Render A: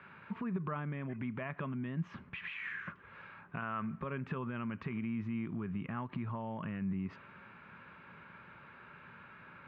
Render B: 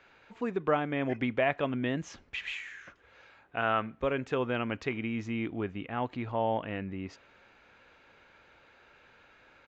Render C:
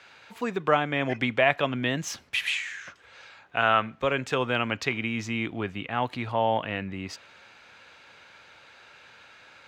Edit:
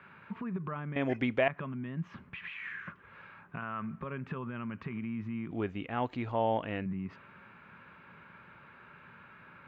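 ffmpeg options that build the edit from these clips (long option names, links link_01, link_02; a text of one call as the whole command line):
ffmpeg -i take0.wav -i take1.wav -filter_complex "[1:a]asplit=2[link_01][link_02];[0:a]asplit=3[link_03][link_04][link_05];[link_03]atrim=end=0.962[link_06];[link_01]atrim=start=0.958:end=1.482[link_07];[link_04]atrim=start=1.478:end=5.512[link_08];[link_02]atrim=start=5.508:end=6.862[link_09];[link_05]atrim=start=6.858[link_10];[link_06][link_07]acrossfade=duration=0.004:curve1=hsin:curve2=hsin[link_11];[link_11][link_08]acrossfade=duration=0.004:curve1=hsin:curve2=hsin[link_12];[link_12][link_09]acrossfade=duration=0.004:curve1=hsin:curve2=hsin[link_13];[link_13][link_10]acrossfade=duration=0.004:curve1=hsin:curve2=hsin" out.wav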